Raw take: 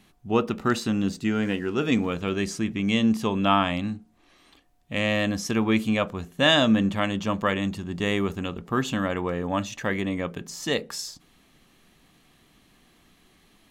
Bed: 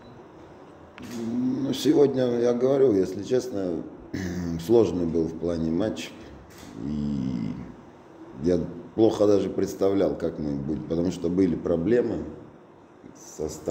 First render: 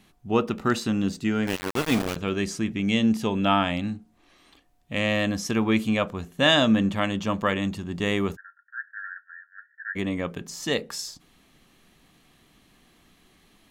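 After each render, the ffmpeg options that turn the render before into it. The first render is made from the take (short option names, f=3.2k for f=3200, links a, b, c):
-filter_complex "[0:a]asettb=1/sr,asplit=3[a][b][c];[a]atrim=end=1.474[d];[b]atrim=start=1.47:end=2.16,asetpts=PTS-STARTPTS,afade=t=in:d=0.004:c=qsin,afade=t=out:st=0.686:d=0.004:c=qsin,aeval=exprs='val(0)*gte(abs(val(0)),0.0668)':c=same[e];[c]atrim=start=2.156[f];[d][e]acrossfade=d=0.004:c1=hsin:c2=qsin[g];[g][f]acrossfade=d=0.004:c1=qsin:c2=hsin,asettb=1/sr,asplit=3[h][i][j];[h]atrim=end=2.714[k];[i]atrim=start=2.71:end=3.93,asetpts=PTS-STARTPTS,afade=t=in:d=0.004:c=qsin,afade=t=out:st=1.216:d=0.004:c=qsin,bandreject=f=1.1k:w=6.6[l];[j]atrim=start=3.926[m];[k][l]acrossfade=d=0.004:c1=hsin:c2=qsin[n];[n][m]acrossfade=d=0.004:c1=qsin:c2=hsin,asplit=3[o][p][q];[o]afade=t=out:st=8.35:d=0.02[r];[p]asuperpass=centerf=1600:order=20:qfactor=3.3,afade=t=in:st=8.35:d=0.02,afade=t=out:st=9.95:d=0.02[s];[q]afade=t=in:st=9.95:d=0.02[t];[r][s][t]amix=inputs=3:normalize=0"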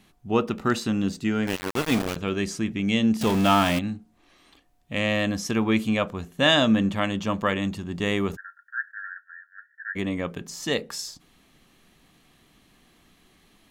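-filter_complex "[0:a]asettb=1/sr,asplit=3[a][b][c];[a]atrim=end=3.214[d];[b]atrim=start=3.21:end=3.79,asetpts=PTS-STARTPTS,afade=t=in:d=0.004:c=qsin,afade=t=out:st=0.576:d=0.004:c=qsin,aeval=exprs='val(0)+0.5*0.0668*sgn(val(0))':c=same[e];[c]atrim=start=3.786[f];[d][e]acrossfade=d=0.004:c1=hsin:c2=qsin[g];[g][f]acrossfade=d=0.004:c1=qsin:c2=hsin,asettb=1/sr,asplit=3[h][i][j];[h]atrim=end=8.334[k];[i]atrim=start=8.33:end=8.92,asetpts=PTS-STARTPTS,afade=t=in:d=0.004:c=qsin,afade=t=out:st=0.586:d=0.004:c=qsin,acontrast=27[l];[j]atrim=start=8.916[m];[k][l]acrossfade=d=0.004:c1=hsin:c2=qsin[n];[n][m]acrossfade=d=0.004:c1=qsin:c2=hsin"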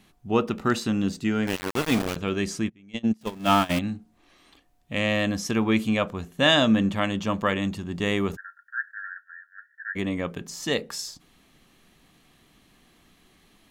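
-filter_complex "[0:a]asplit=3[a][b][c];[a]afade=t=out:st=2.68:d=0.02[d];[b]agate=range=-26dB:threshold=-20dB:ratio=16:release=100:detection=peak,afade=t=in:st=2.68:d=0.02,afade=t=out:st=3.69:d=0.02[e];[c]afade=t=in:st=3.69:d=0.02[f];[d][e][f]amix=inputs=3:normalize=0"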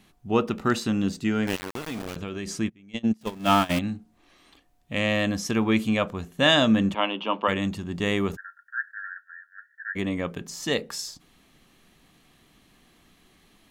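-filter_complex "[0:a]asettb=1/sr,asplit=3[a][b][c];[a]atrim=end=1.584[d];[b]atrim=start=1.58:end=2.5,asetpts=PTS-STARTPTS,afade=t=in:d=0.004:c=qsin,afade=t=out:st=0.916:d=0.004:c=qsin,acompressor=threshold=-28dB:ratio=12:attack=3.2:release=140:knee=1:detection=peak[e];[c]atrim=start=2.496[f];[d][e]acrossfade=d=0.004:c1=hsin:c2=qsin[g];[g][f]acrossfade=d=0.004:c1=qsin:c2=hsin,asplit=3[h][i][j];[h]afade=t=out:st=6.93:d=0.02[k];[i]highpass=f=270:w=0.5412,highpass=f=270:w=1.3066,equalizer=f=930:t=q:w=4:g=8,equalizer=f=1.8k:t=q:w=4:g=-8,equalizer=f=2.9k:t=q:w=4:g=9,lowpass=f=3.4k:w=0.5412,lowpass=f=3.4k:w=1.3066,afade=t=in:st=6.93:d=0.02,afade=t=out:st=7.47:d=0.02[l];[j]afade=t=in:st=7.47:d=0.02[m];[k][l][m]amix=inputs=3:normalize=0"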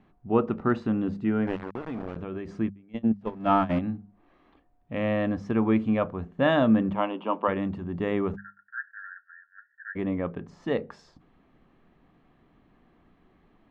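-af "lowpass=1.3k,bandreject=f=50:t=h:w=6,bandreject=f=100:t=h:w=6,bandreject=f=150:t=h:w=6,bandreject=f=200:t=h:w=6"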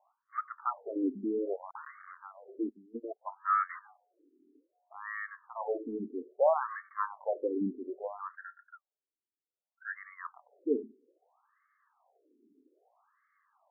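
-filter_complex "[0:a]acrossover=split=170|330|1100[a][b][c][d];[b]aeval=exprs='0.0501*(abs(mod(val(0)/0.0501+3,4)-2)-1)':c=same[e];[a][e][c][d]amix=inputs=4:normalize=0,afftfilt=real='re*between(b*sr/1024,300*pow(1600/300,0.5+0.5*sin(2*PI*0.62*pts/sr))/1.41,300*pow(1600/300,0.5+0.5*sin(2*PI*0.62*pts/sr))*1.41)':imag='im*between(b*sr/1024,300*pow(1600/300,0.5+0.5*sin(2*PI*0.62*pts/sr))/1.41,300*pow(1600/300,0.5+0.5*sin(2*PI*0.62*pts/sr))*1.41)':win_size=1024:overlap=0.75"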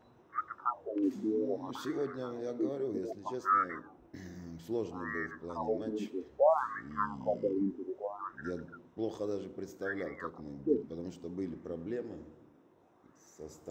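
-filter_complex "[1:a]volume=-16.5dB[a];[0:a][a]amix=inputs=2:normalize=0"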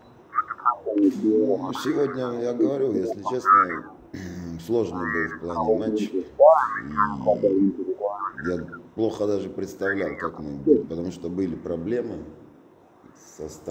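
-af "volume=12dB"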